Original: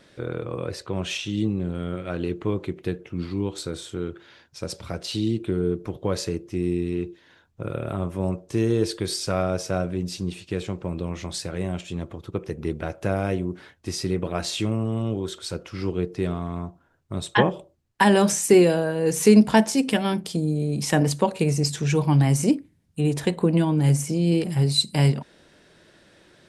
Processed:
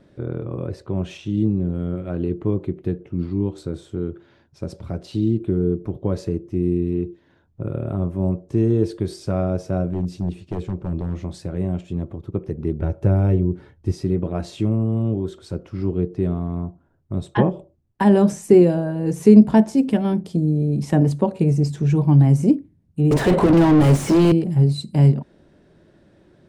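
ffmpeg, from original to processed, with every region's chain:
-filter_complex "[0:a]asettb=1/sr,asplit=3[a][b][c];[a]atrim=end=9.914[d];[b]atrim=start=9.91:end=11.19,asetpts=PTS-STARTPTS,afade=t=in:d=0.004:c=qsin,afade=t=out:st=1.276:d=0.004:c=qsin,aeval=exprs='0.0841*(abs(mod(val(0)/0.0841+3,4)-2)-1)':c=same,equalizer=f=64:w=1.6:g=5[e];[c]atrim=start=11.186[f];[d][e]acrossfade=d=0.004:c1=hsin:c2=qsin[g];[g][f]acrossfade=d=0.004:c1=qsin:c2=hsin,asettb=1/sr,asplit=3[h][i][j];[h]atrim=end=12.794[k];[i]atrim=start=12.79:end=13.92,asetpts=PTS-STARTPTS,afade=t=in:d=0.004:c=qsin,afade=t=out:st=1.126:d=0.004:c=qsin,bass=f=250:g=6,treble=f=4k:g=0,aecho=1:1:2.2:0.34,atrim=end_sample=49833[l];[j]atrim=start=13.916[m];[k][l]acrossfade=d=0.004:c1=hsin:c2=qsin[n];[n][m]acrossfade=d=0.004:c1=qsin:c2=hsin,asettb=1/sr,asplit=3[o][p][q];[o]atrim=end=23.114[r];[p]atrim=start=23.11:end=24.32,asetpts=PTS-STARTPTS,afade=t=in:d=0.004:c=qsin,afade=t=out:st=1.206:d=0.004:c=qsin,highpass=f=240:p=1,asplit=2[s][t];[t]highpass=f=720:p=1,volume=39dB,asoftclip=type=tanh:threshold=-9.5dB[u];[s][u]amix=inputs=2:normalize=0,lowpass=f=4.9k:p=1,volume=-6dB[v];[q]atrim=start=24.316[w];[r][v]acrossfade=d=0.004:c1=hsin:c2=qsin[x];[x][w]acrossfade=d=0.004:c1=qsin:c2=hsin,tiltshelf=f=970:g=9.5,bandreject=f=480:w=12,volume=-3.5dB"

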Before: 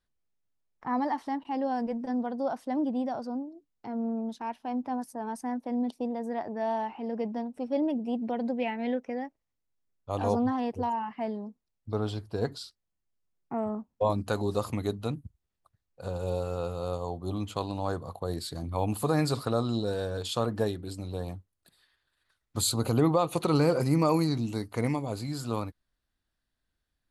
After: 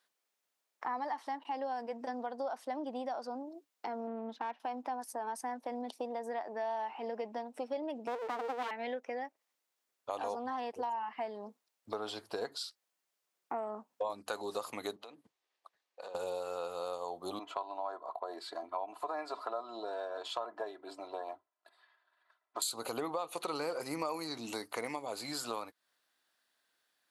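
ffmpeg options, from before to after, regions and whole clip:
-filter_complex "[0:a]asettb=1/sr,asplit=3[a][b][c];[a]atrim=end=4.074[d];[b]atrim=start=4.07:end=4.6,asetpts=PTS-STARTPTS,afade=t=in:d=0.004:c=qsin,afade=t=out:st=0.526:d=0.004:c=qsin,aecho=1:1:3.8:0.34,atrim=end_sample=23373,adynamicsmooth=sensitivity=5.5:basefreq=2k[e];[c]atrim=start=4.596[f];[d][e]acrossfade=d=0.004:c1=hsin:c2=qsin[g];[g][f]acrossfade=d=0.004:c1=qsin:c2=hsin,asettb=1/sr,asplit=3[h][i][j];[h]atrim=end=8.074[k];[i]atrim=start=8.07:end=8.71,asetpts=PTS-STARTPTS,afade=t=in:d=0.004:c=qsin,afade=t=out:st=0.636:d=0.004:c=qsin,tiltshelf=f=890:g=7,aeval=exprs='abs(val(0))':c=same[l];[j]atrim=start=8.706[m];[k][l]acrossfade=d=0.004:c1=hsin:c2=qsin[n];[n][m]acrossfade=d=0.004:c1=qsin:c2=hsin,asettb=1/sr,asplit=3[o][p][q];[o]atrim=end=14.964[r];[p]atrim=start=14.96:end=16.15,asetpts=PTS-STARTPTS,afade=t=in:d=0.004:c=qsin,afade=t=out:st=1.186:d=0.004:c=qsin,acrossover=split=240 5800:gain=0.112 1 0.224[s][t][u];[s][t][u]amix=inputs=3:normalize=0,bandreject=f=1.4k:w=9.6,acompressor=threshold=-47dB:ratio=16:attack=3.2:release=140:knee=1:detection=peak[v];[q]atrim=start=16.146[w];[r][v]acrossfade=d=0.004:c1=hsin:c2=qsin[x];[x][w]acrossfade=d=0.004:c1=qsin:c2=hsin,asettb=1/sr,asplit=3[y][z][aa];[y]atrim=end=17.394[ab];[z]atrim=start=17.39:end=22.62,asetpts=PTS-STARTPTS,afade=t=in:d=0.004:c=qsin,afade=t=out:st=5.226:d=0.004:c=qsin,bandpass=f=830:t=q:w=1.4,aecho=1:1:3:0.64,atrim=end_sample=230643[ac];[aa]atrim=start=22.616[ad];[ab][ac]acrossfade=d=0.004:c1=hsin:c2=qsin[ae];[ae][ad]acrossfade=d=0.004:c1=qsin:c2=hsin,highpass=560,acompressor=threshold=-46dB:ratio=4,volume=9dB"

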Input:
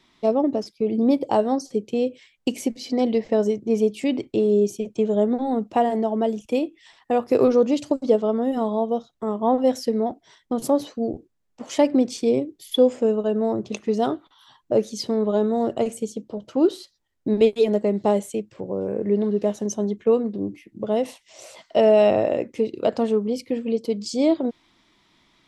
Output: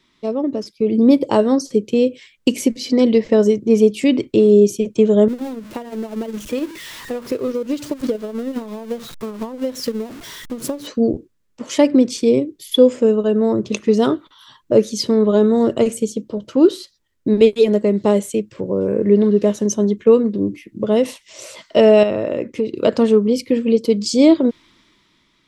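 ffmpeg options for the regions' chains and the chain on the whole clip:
-filter_complex "[0:a]asettb=1/sr,asplit=3[a][b][c];[a]atrim=end=5.284[d];[b]atrim=start=5.28:end=10.87,asetpts=PTS-STARTPTS,afade=t=in:d=0.004:c=qsin,afade=t=out:st=5.586:d=0.004:c=qsin,aeval=exprs='val(0)+0.5*0.0355*sgn(val(0))':c=same,acompressor=threshold=-25dB:ratio=16:attack=3.2:release=140:knee=1:detection=peak,agate=range=-12dB:threshold=-29dB:ratio=16:release=100:detection=peak[e];[c]atrim=start=10.866[f];[d][e]acrossfade=d=0.004:c1=hsin:c2=qsin[g];[g][f]acrossfade=d=0.004:c1=qsin:c2=hsin,asettb=1/sr,asplit=3[h][i][j];[h]atrim=end=22.034[k];[i]atrim=start=22.03:end=22.77,asetpts=PTS-STARTPTS,afade=t=in:d=0.004:c=qsin,afade=t=out:st=0.736:d=0.004:c=qsin,highshelf=f=5.2k:g=-6.5,acompressor=threshold=-26dB:ratio=2:attack=3.2:release=140:knee=1:detection=peak[l];[j]atrim=start=22.766[m];[k][l]acrossfade=d=0.004:c1=hsin:c2=qsin[n];[n][m]acrossfade=d=0.004:c1=qsin:c2=hsin,equalizer=f=750:w=4.5:g=-13.5,dynaudnorm=f=140:g=11:m=11.5dB"

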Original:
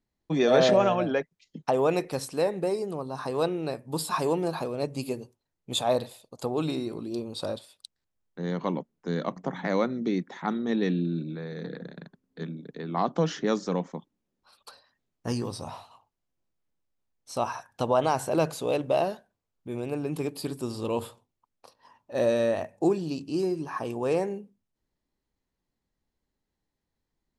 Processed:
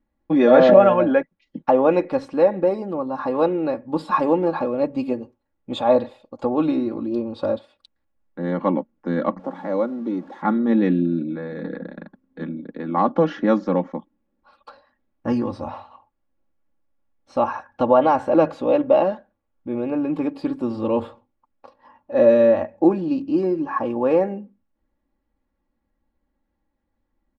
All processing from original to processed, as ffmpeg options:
-filter_complex "[0:a]asettb=1/sr,asplit=3[a][b][c];[a]atrim=end=9.394[d];[b]atrim=start=9.39:end=10.42,asetpts=PTS-STARTPTS,afade=t=in:d=0.004:c=qsin,afade=t=out:st=1.026:d=0.004:c=qsin,aeval=exprs='val(0)+0.5*0.0112*sgn(val(0))':c=same,highpass=f=580:p=1,equalizer=f=2.1k:w=0.72:g=-14[e];[c]atrim=start=10.416[f];[d][e]acrossfade=d=0.004:c1=hsin:c2=qsin[g];[g][f]acrossfade=d=0.004:c1=qsin:c2=hsin,lowpass=1.8k,aecho=1:1:3.6:0.75,volume=6.5dB"

